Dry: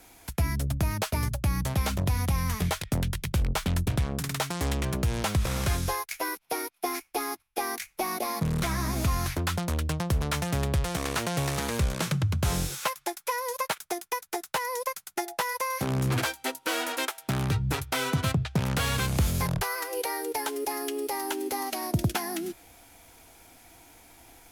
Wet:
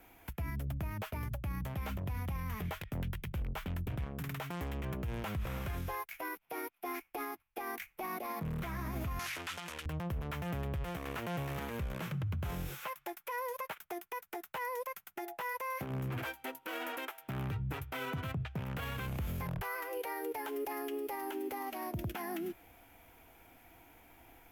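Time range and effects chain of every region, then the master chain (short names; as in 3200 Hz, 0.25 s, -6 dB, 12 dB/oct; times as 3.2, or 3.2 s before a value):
9.19–9.86 zero-crossing step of -32.5 dBFS + weighting filter ITU-R 468
whole clip: band shelf 6300 Hz -12.5 dB; limiter -26 dBFS; gain -4.5 dB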